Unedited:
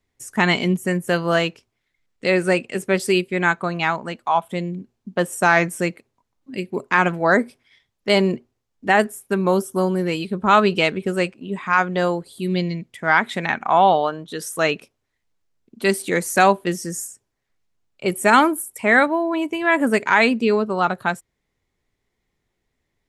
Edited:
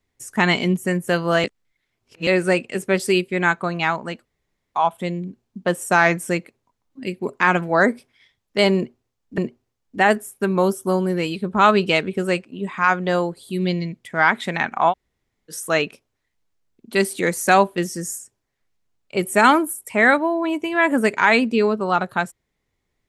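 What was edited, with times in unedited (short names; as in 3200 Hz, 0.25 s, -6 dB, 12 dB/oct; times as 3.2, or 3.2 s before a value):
1.44–2.27 reverse
4.25 insert room tone 0.49 s
8.27–8.89 loop, 2 plays
13.8–14.4 room tone, crossfade 0.06 s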